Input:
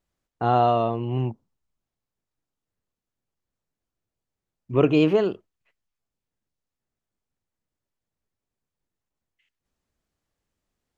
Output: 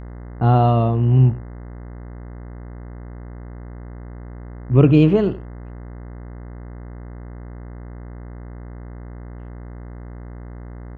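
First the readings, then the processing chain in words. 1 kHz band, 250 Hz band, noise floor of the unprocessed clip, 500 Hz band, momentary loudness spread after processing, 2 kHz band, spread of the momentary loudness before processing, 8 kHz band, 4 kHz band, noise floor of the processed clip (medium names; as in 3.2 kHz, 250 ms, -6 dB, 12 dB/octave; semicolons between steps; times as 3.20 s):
+0.5 dB, +6.5 dB, under -85 dBFS, +2.0 dB, 11 LU, +0.5 dB, 9 LU, no reading, -1.5 dB, -35 dBFS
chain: tone controls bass +15 dB, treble -5 dB; mains buzz 60 Hz, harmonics 35, -34 dBFS -7 dB/octave; delay 93 ms -18 dB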